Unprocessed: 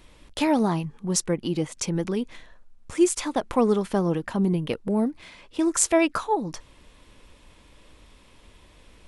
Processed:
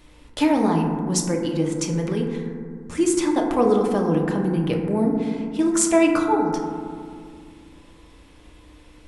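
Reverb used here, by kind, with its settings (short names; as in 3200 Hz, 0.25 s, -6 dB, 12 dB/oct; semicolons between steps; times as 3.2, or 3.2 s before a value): FDN reverb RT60 2.1 s, low-frequency decay 1.45×, high-frequency decay 0.25×, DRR 0.5 dB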